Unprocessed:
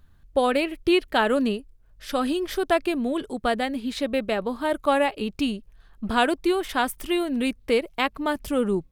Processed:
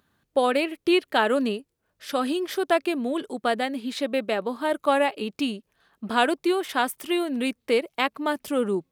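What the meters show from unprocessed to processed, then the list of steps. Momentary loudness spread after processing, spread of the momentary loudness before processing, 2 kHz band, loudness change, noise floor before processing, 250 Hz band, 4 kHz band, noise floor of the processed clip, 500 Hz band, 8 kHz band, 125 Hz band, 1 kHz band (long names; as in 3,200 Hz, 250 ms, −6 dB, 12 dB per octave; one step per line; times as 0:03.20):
7 LU, 6 LU, 0.0 dB, −0.5 dB, −56 dBFS, −1.5 dB, 0.0 dB, −77 dBFS, 0.0 dB, 0.0 dB, can't be measured, 0.0 dB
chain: high-pass filter 220 Hz 12 dB per octave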